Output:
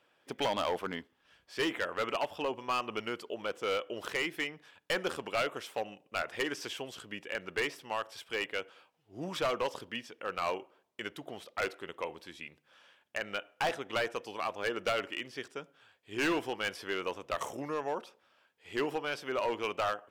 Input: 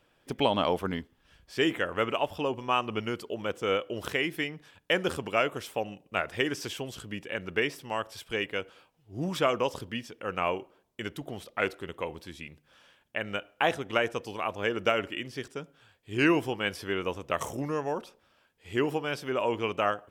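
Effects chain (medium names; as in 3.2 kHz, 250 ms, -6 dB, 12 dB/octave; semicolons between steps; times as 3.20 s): high-pass 530 Hz 6 dB/octave; treble shelf 5.9 kHz -8 dB; overload inside the chain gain 25.5 dB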